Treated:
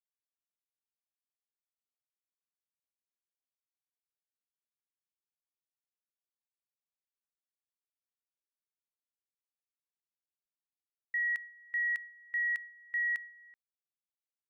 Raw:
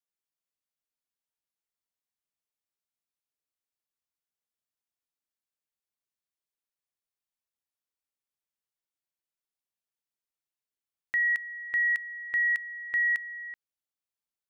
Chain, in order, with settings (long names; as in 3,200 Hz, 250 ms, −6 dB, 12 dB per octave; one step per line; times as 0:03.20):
downward expander −32 dBFS
level −6 dB